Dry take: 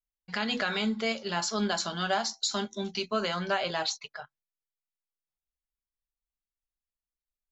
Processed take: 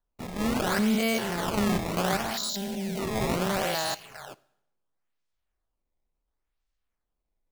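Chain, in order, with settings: stepped spectrum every 0.2 s; low shelf 90 Hz +11 dB; decimation with a swept rate 17×, swing 160% 0.71 Hz; 2.49–2.99 fixed phaser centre 320 Hz, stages 6; plate-style reverb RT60 0.77 s, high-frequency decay 1×, DRR 18.5 dB; gain +6 dB

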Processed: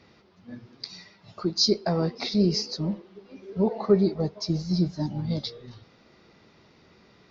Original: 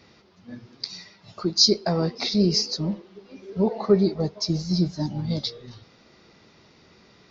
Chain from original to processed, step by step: high shelf 5600 Hz -9.5 dB; gain -1.5 dB

